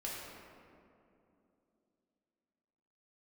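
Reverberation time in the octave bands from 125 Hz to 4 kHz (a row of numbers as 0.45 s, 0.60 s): 3.1 s, 3.8 s, 3.2 s, 2.5 s, 1.8 s, 1.2 s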